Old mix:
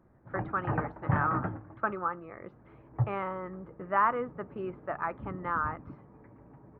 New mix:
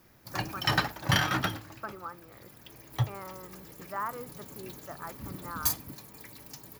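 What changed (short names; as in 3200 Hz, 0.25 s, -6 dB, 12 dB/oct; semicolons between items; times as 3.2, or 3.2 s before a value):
speech -9.0 dB; background: remove Gaussian blur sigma 6.7 samples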